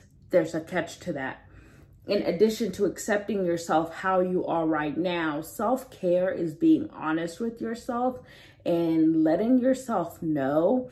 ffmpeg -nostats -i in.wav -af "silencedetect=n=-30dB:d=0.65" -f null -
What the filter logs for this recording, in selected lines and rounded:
silence_start: 1.32
silence_end: 2.09 | silence_duration: 0.77